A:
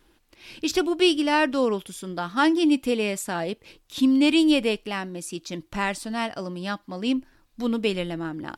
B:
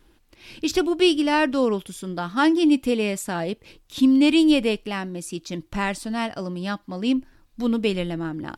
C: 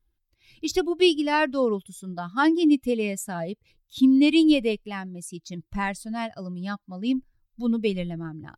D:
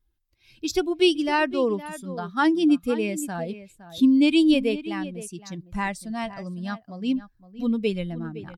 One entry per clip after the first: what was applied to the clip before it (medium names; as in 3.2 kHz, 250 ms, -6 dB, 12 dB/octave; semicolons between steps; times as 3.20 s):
bass shelf 240 Hz +6 dB
expander on every frequency bin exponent 1.5
echo from a far wall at 88 m, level -14 dB